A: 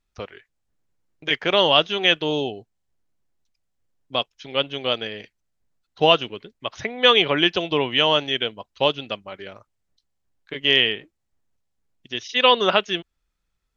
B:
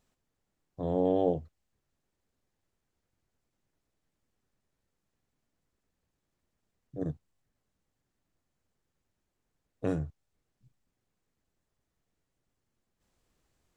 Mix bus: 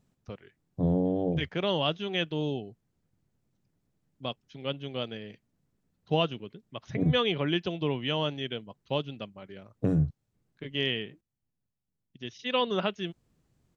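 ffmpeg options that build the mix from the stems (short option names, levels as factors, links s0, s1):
-filter_complex "[0:a]adelay=100,volume=0.2[s0];[1:a]acompressor=threshold=0.0398:ratio=6,volume=0.794,asplit=3[s1][s2][s3];[s1]atrim=end=11.21,asetpts=PTS-STARTPTS,afade=t=out:st=11.206:d=0.004:c=hsin[s4];[s2]atrim=start=11.21:end=12.35,asetpts=PTS-STARTPTS,volume=0[s5];[s3]atrim=start=12.35,asetpts=PTS-STARTPTS,afade=t=in:d=0.004:c=hsin[s6];[s4][s5][s6]concat=n=3:v=0:a=1[s7];[s0][s7]amix=inputs=2:normalize=0,equalizer=f=150:t=o:w=2.3:g=14.5"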